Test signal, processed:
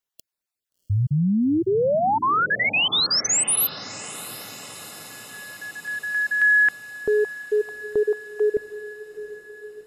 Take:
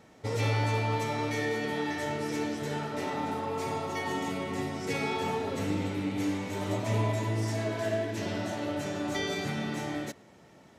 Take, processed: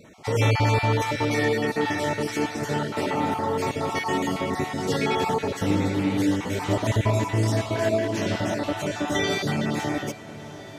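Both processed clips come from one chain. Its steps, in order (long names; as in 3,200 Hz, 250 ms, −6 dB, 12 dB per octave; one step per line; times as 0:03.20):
time-frequency cells dropped at random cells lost 24%
on a send: feedback delay with all-pass diffusion 713 ms, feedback 64%, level −16 dB
on the sum: level +8 dB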